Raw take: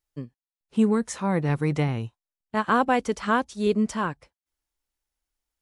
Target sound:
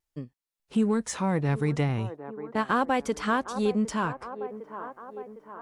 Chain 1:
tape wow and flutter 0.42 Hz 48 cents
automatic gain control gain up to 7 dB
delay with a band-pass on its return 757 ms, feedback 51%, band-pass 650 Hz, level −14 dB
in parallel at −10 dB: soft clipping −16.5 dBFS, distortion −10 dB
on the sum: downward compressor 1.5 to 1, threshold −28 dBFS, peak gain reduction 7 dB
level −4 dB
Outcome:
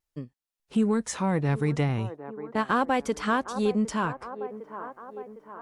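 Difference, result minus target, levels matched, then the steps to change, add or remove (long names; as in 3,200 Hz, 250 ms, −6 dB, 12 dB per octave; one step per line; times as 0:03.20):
soft clipping: distortion −6 dB
change: soft clipping −25.5 dBFS, distortion −4 dB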